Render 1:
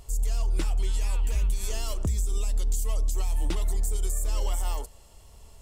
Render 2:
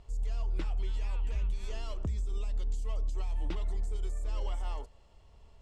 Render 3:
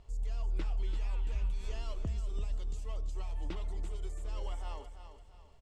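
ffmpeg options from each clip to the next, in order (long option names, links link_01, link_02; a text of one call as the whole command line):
ffmpeg -i in.wav -af "lowpass=3500,volume=-6.5dB" out.wav
ffmpeg -i in.wav -af "aecho=1:1:338|676|1014|1352:0.316|0.117|0.0433|0.016,volume=-2.5dB" out.wav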